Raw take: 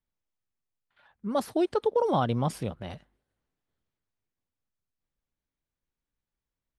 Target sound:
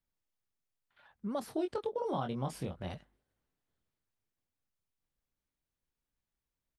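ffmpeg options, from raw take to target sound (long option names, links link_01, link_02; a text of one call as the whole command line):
ffmpeg -i in.wav -filter_complex "[0:a]acompressor=threshold=-34dB:ratio=3,asplit=3[link_01][link_02][link_03];[link_01]afade=type=out:start_time=1.41:duration=0.02[link_04];[link_02]asplit=2[link_05][link_06];[link_06]adelay=22,volume=-5dB[link_07];[link_05][link_07]amix=inputs=2:normalize=0,afade=type=in:start_time=1.41:duration=0.02,afade=type=out:start_time=2.88:duration=0.02[link_08];[link_03]afade=type=in:start_time=2.88:duration=0.02[link_09];[link_04][link_08][link_09]amix=inputs=3:normalize=0,volume=-1.5dB" out.wav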